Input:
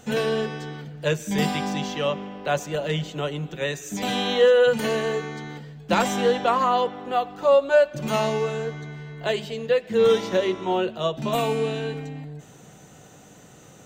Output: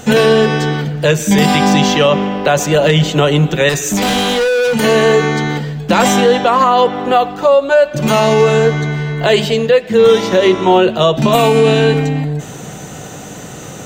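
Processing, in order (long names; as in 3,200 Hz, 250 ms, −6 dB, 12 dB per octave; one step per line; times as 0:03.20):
speech leveller within 4 dB 0.5 s
0:03.69–0:04.75: hard clipping −27 dBFS, distortion −14 dB
boost into a limiter +16 dB
level −1 dB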